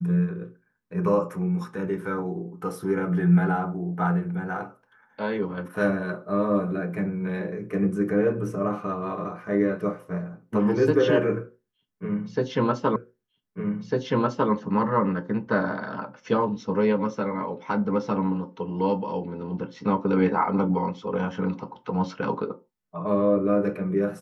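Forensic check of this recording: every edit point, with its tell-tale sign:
12.96 s: repeat of the last 1.55 s

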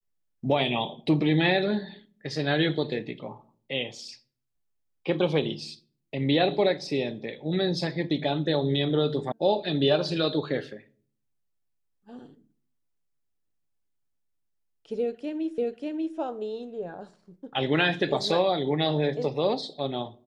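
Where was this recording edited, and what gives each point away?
9.32 s: sound stops dead
15.58 s: repeat of the last 0.59 s

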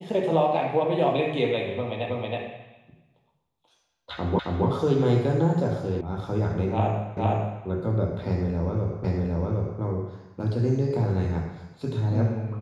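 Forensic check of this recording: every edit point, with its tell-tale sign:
2.10 s: repeat of the last 0.32 s
4.39 s: repeat of the last 0.27 s
6.01 s: sound stops dead
7.17 s: repeat of the last 0.46 s
9.04 s: repeat of the last 0.76 s

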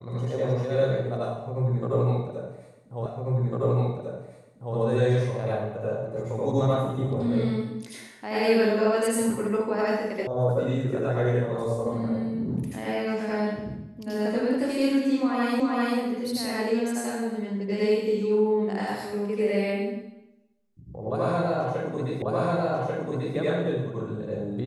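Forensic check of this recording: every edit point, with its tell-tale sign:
3.06 s: repeat of the last 1.7 s
10.27 s: sound stops dead
15.60 s: repeat of the last 0.39 s
22.22 s: repeat of the last 1.14 s

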